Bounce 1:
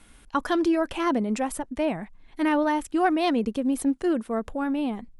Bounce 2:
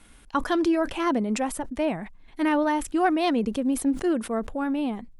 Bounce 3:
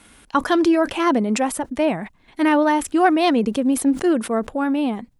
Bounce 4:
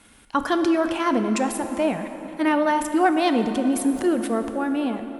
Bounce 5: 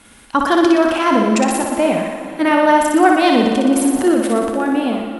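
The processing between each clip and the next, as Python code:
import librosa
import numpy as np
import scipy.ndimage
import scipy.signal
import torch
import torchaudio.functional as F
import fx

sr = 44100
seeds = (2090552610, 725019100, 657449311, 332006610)

y1 = fx.sustainer(x, sr, db_per_s=140.0)
y2 = fx.highpass(y1, sr, hz=120.0, slope=6)
y2 = y2 * librosa.db_to_amplitude(6.5)
y3 = fx.rev_plate(y2, sr, seeds[0], rt60_s=4.1, hf_ratio=0.55, predelay_ms=0, drr_db=7.0)
y3 = y3 * librosa.db_to_amplitude(-3.5)
y4 = fx.echo_thinned(y3, sr, ms=60, feedback_pct=67, hz=230.0, wet_db=-4)
y4 = y4 * librosa.db_to_amplitude(6.0)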